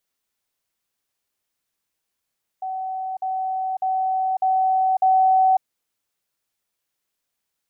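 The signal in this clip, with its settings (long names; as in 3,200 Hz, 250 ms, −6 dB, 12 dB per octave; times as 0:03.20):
level staircase 756 Hz −25 dBFS, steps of 3 dB, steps 5, 0.55 s 0.05 s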